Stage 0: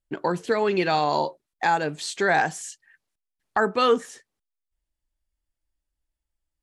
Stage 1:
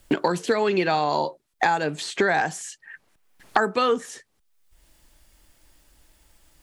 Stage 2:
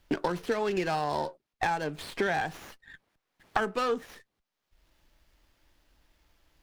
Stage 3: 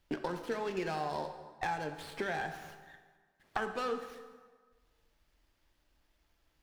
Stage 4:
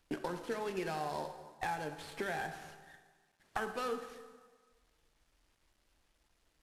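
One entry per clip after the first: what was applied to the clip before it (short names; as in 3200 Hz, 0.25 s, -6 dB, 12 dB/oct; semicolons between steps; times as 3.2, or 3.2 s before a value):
three-band squash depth 100%
running maximum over 5 samples; gain -7 dB
plate-style reverb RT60 1.5 s, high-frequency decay 0.75×, DRR 6.5 dB; gain -7.5 dB
CVSD 64 kbps; gain -2 dB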